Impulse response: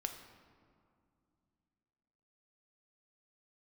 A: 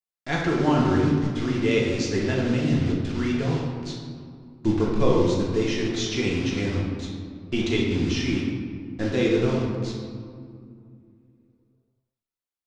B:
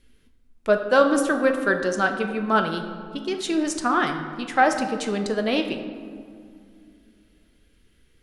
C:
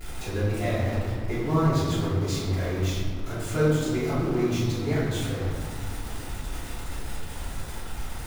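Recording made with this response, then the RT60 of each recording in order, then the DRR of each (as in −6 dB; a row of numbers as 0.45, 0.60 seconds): B; 2.3, 2.4, 2.3 seconds; −4.0, 5.0, −11.5 decibels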